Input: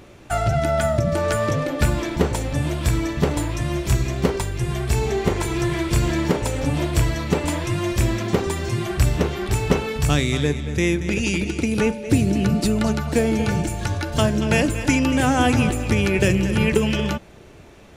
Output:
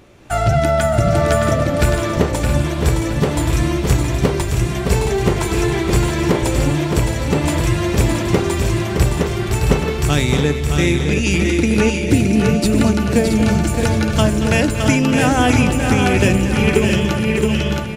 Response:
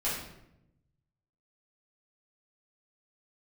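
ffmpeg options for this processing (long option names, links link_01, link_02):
-filter_complex "[0:a]asplit=2[link_01][link_02];[link_02]aecho=0:1:671:0.422[link_03];[link_01][link_03]amix=inputs=2:normalize=0,dynaudnorm=framelen=130:gausssize=5:maxgain=11.5dB,asplit=2[link_04][link_05];[link_05]aecho=0:1:616:0.501[link_06];[link_04][link_06]amix=inputs=2:normalize=0,volume=-2dB"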